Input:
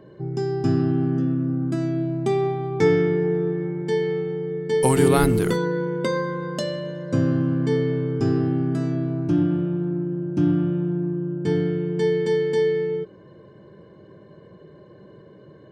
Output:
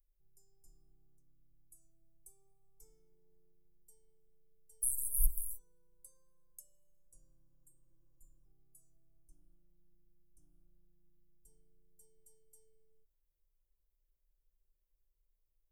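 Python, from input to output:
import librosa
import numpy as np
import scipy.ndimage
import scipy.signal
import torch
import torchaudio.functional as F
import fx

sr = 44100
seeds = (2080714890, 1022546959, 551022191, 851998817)

y = scipy.signal.sosfilt(scipy.signal.cheby2(4, 60, [100.0, 4300.0], 'bandstop', fs=sr, output='sos'), x)
y = fx.spec_repair(y, sr, seeds[0], start_s=7.52, length_s=0.91, low_hz=290.0, high_hz=7000.0, source='before')
y = y * librosa.db_to_amplitude(6.0)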